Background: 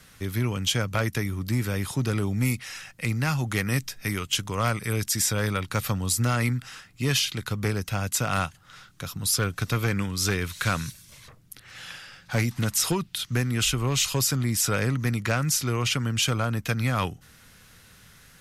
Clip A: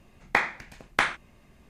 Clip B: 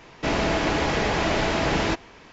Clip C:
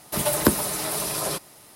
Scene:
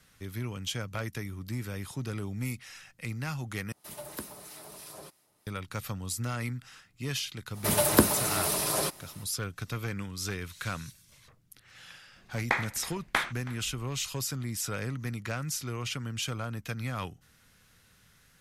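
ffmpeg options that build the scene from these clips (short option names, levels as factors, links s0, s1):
-filter_complex "[3:a]asplit=2[s0][s1];[0:a]volume=0.335[s2];[s0]acrossover=split=1300[s3][s4];[s3]aeval=exprs='val(0)*(1-0.5/2+0.5/2*cos(2*PI*3.1*n/s))':c=same[s5];[s4]aeval=exprs='val(0)*(1-0.5/2-0.5/2*cos(2*PI*3.1*n/s))':c=same[s6];[s5][s6]amix=inputs=2:normalize=0[s7];[1:a]aecho=1:1:323:0.1[s8];[s2]asplit=2[s9][s10];[s9]atrim=end=3.724[s11];[s7]atrim=end=1.75,asetpts=PTS-STARTPTS,volume=0.141[s12];[s10]atrim=start=5.466[s13];[s1]atrim=end=1.75,asetpts=PTS-STARTPTS,volume=0.841,afade=t=in:d=0.05,afade=t=out:st=1.7:d=0.05,adelay=7520[s14];[s8]atrim=end=1.69,asetpts=PTS-STARTPTS,volume=0.596,afade=t=in:d=0.004:c=hsin,afade=t=out:st=1.686:d=0.004:c=hsin,adelay=12160[s15];[s11][s12]acrossfade=d=0.004:c1=hsin:c2=hsin[s16];[s16][s13]acrossfade=d=0.004:c1=hsin:c2=hsin[s17];[s17][s14][s15]amix=inputs=3:normalize=0"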